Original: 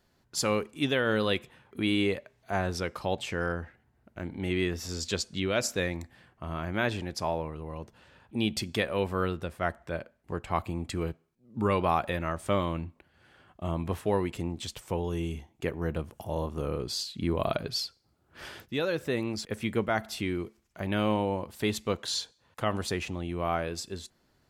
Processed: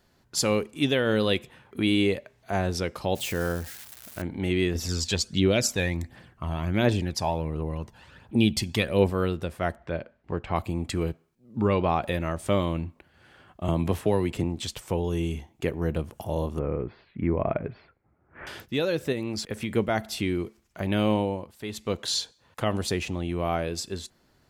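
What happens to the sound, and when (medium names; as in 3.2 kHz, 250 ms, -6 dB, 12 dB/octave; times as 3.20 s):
3.15–4.22 s: zero-crossing glitches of -34 dBFS
4.75–9.10 s: phaser 1.4 Hz, delay 1.3 ms, feedback 47%
9.76–10.56 s: low-pass 3.8 kHz
11.60–12.03 s: distance through air 110 m
13.68–14.44 s: three bands compressed up and down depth 70%
16.59–18.47 s: elliptic low-pass 2.2 kHz, stop band 80 dB
19.12–19.71 s: compression 3:1, threshold -31 dBFS
21.18–22.03 s: dip -11.5 dB, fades 0.35 s
whole clip: dynamic bell 1.3 kHz, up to -6 dB, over -43 dBFS, Q 1; trim +4.5 dB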